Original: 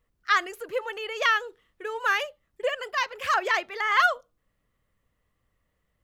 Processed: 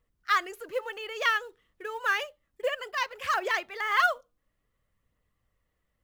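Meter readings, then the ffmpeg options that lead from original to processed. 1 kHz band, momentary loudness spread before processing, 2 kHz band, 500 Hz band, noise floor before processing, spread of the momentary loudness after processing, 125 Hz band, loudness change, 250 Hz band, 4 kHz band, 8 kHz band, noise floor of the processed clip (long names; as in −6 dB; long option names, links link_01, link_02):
−3.0 dB, 14 LU, −3.0 dB, −3.0 dB, −76 dBFS, 14 LU, can't be measured, −3.0 dB, −2.5 dB, −3.0 dB, −2.5 dB, −79 dBFS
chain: -af "acrusher=bits=7:mode=log:mix=0:aa=0.000001,aphaser=in_gain=1:out_gain=1:delay=4.1:decay=0.24:speed=0.58:type=triangular,volume=-3.5dB"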